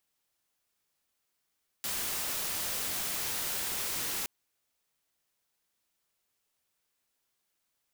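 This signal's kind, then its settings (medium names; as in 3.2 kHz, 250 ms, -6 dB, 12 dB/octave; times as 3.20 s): noise white, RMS -34 dBFS 2.42 s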